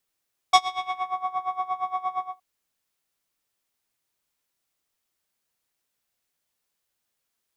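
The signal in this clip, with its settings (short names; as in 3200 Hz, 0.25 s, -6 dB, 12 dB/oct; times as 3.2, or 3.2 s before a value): synth patch with tremolo F#5, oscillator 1 square, oscillator 2 square, interval +7 st, oscillator 2 level -1 dB, sub -28 dB, noise -9.5 dB, filter lowpass, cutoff 1000 Hz, Q 1.3, filter envelope 2.5 oct, filter decay 0.64 s, filter sustain 15%, attack 7.1 ms, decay 0.07 s, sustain -15.5 dB, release 0.22 s, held 1.65 s, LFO 8.6 Hz, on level 18 dB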